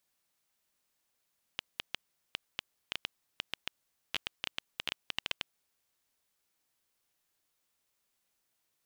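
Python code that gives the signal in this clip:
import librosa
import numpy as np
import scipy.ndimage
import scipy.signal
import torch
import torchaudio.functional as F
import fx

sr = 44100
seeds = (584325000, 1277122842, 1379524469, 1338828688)

y = fx.geiger_clicks(sr, seeds[0], length_s=4.2, per_s=6.9, level_db=-15.0)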